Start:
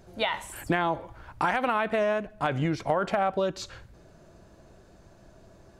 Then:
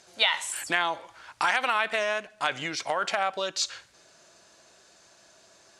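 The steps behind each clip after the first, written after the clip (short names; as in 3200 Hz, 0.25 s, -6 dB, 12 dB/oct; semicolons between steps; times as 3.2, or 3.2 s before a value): weighting filter ITU-R 468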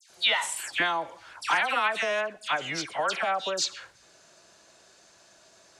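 dispersion lows, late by 0.101 s, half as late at 2100 Hz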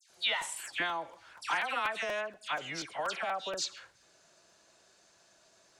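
crackling interface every 0.24 s, samples 256, repeat, from 0.41; gain -7 dB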